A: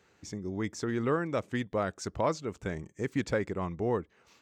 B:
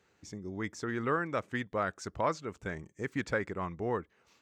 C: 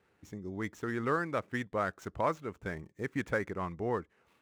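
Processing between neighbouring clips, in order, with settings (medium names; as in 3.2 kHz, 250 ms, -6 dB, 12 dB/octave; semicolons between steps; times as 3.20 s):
dynamic bell 1.5 kHz, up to +8 dB, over -47 dBFS, Q 0.94; trim -4.5 dB
median filter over 9 samples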